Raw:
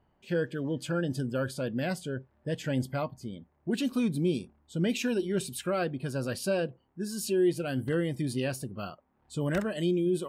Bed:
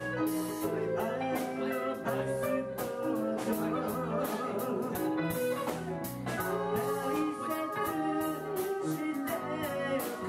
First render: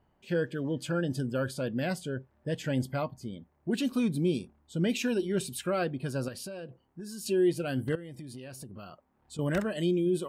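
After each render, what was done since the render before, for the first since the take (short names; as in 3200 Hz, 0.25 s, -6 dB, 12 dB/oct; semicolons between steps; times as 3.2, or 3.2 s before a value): 6.28–7.26 compressor 10:1, threshold -37 dBFS; 7.95–9.39 compressor 8:1, threshold -40 dBFS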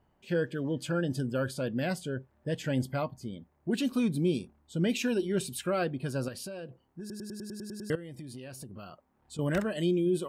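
7 stutter in place 0.10 s, 9 plays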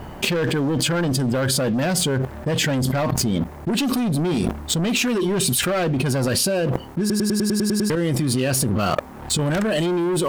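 sample leveller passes 3; fast leveller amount 100%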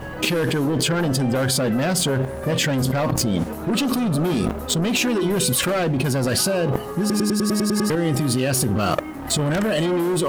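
add bed 0 dB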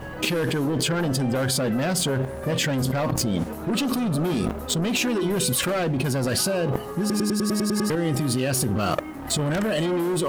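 gain -3 dB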